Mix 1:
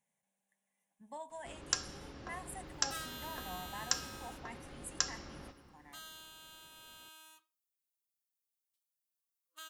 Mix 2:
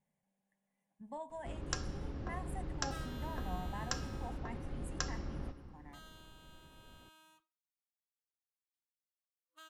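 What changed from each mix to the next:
second sound -3.0 dB; master: add tilt EQ -3 dB/octave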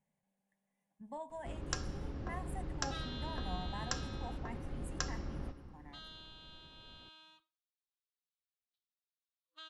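second sound: add resonant low-pass 3.9 kHz, resonance Q 4

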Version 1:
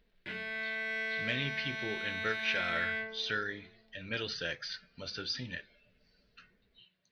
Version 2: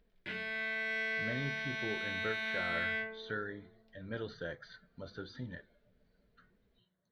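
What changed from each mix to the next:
speech: add boxcar filter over 17 samples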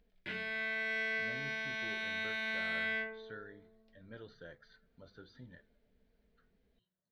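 speech -10.0 dB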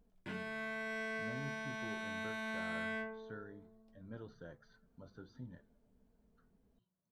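master: add graphic EQ 125/250/500/1000/2000/4000/8000 Hz +4/+4/-3/+7/-10/-9/+9 dB

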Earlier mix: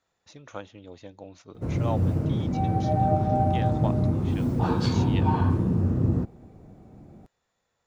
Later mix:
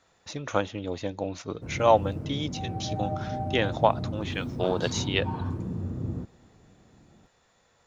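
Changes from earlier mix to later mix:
speech +12.0 dB; background -9.0 dB

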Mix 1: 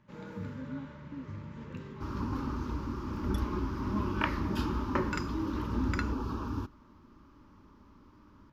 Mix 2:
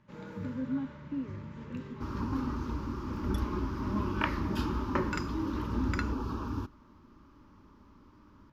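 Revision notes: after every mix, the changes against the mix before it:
speech +8.0 dB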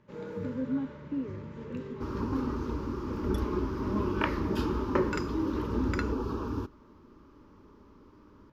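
master: add peaking EQ 440 Hz +10.5 dB 0.67 oct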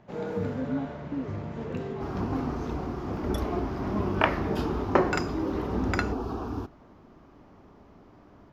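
first sound +6.5 dB; master: remove Butterworth band-stop 720 Hz, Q 2.9

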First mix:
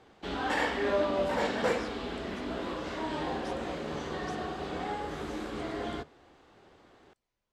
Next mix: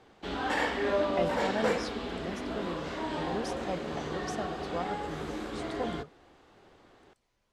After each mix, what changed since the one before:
speech +9.5 dB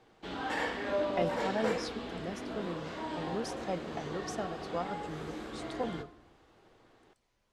background -8.0 dB; reverb: on, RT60 0.90 s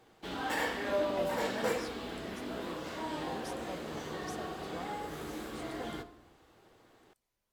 speech -10.0 dB; master: remove distance through air 70 m

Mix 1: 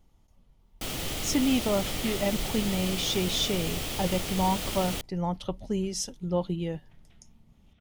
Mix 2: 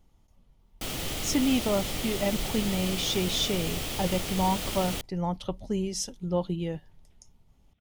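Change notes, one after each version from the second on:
second sound -9.0 dB; reverb: off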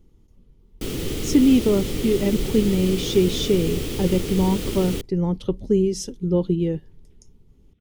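master: add resonant low shelf 530 Hz +7.5 dB, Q 3

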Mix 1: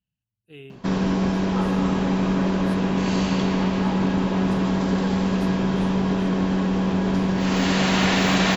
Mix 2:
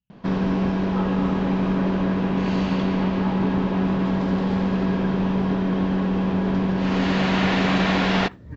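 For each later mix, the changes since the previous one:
first sound: entry -0.60 s; master: add distance through air 180 m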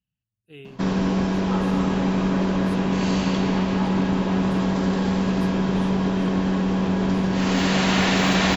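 first sound: entry +0.55 s; second sound: send off; master: remove distance through air 180 m

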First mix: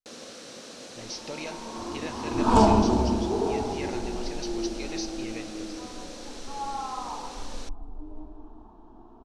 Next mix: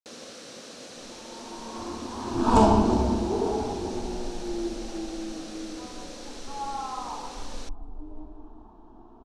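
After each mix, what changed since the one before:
speech: muted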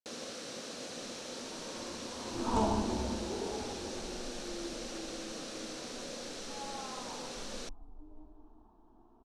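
second sound -12.0 dB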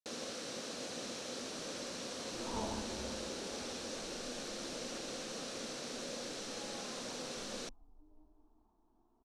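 second sound -11.0 dB

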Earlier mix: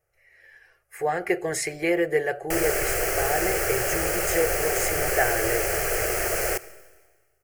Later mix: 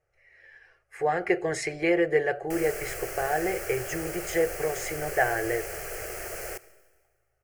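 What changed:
speech: add distance through air 77 m; background -11.0 dB

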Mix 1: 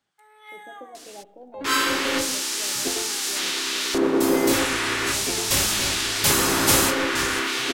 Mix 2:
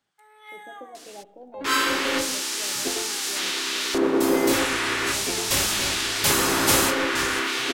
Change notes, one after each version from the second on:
second sound: add tone controls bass -3 dB, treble -2 dB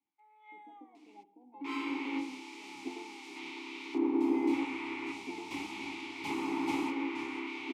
master: add vowel filter u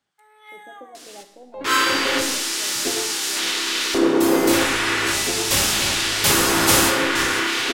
second sound: send on; master: remove vowel filter u

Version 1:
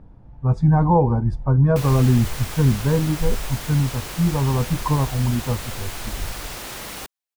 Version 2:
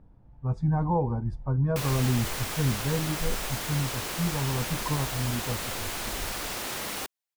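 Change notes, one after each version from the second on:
speech -9.5 dB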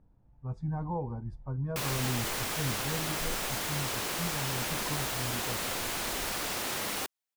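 speech -8.5 dB

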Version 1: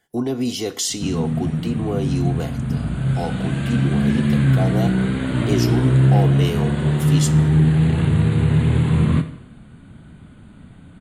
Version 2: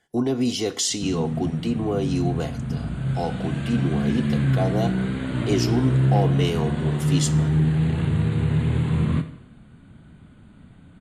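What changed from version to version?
background -5.0 dB; master: add low-pass 9.3 kHz 12 dB/octave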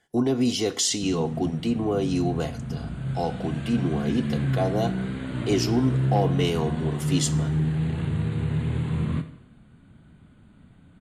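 background -4.5 dB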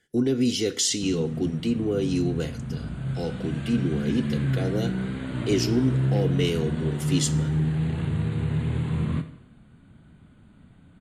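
speech: add high-order bell 860 Hz -13 dB 1.1 oct

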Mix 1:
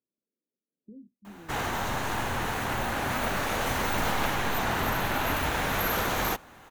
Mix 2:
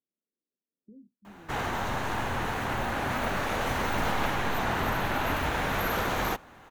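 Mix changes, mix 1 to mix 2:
speech -4.0 dB; master: add treble shelf 4.9 kHz -8 dB

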